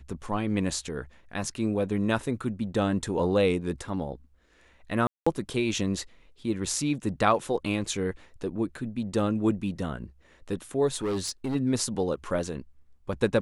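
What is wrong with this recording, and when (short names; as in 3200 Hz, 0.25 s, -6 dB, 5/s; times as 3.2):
5.07–5.26 gap 0.195 s
10.95–11.56 clipped -25.5 dBFS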